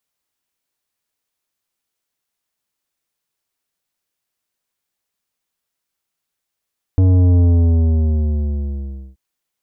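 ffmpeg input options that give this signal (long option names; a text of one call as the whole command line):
ffmpeg -f lavfi -i "aevalsrc='0.316*clip((2.18-t)/1.77,0,1)*tanh(3.55*sin(2*PI*94*2.18/log(65/94)*(exp(log(65/94)*t/2.18)-1)))/tanh(3.55)':duration=2.18:sample_rate=44100" out.wav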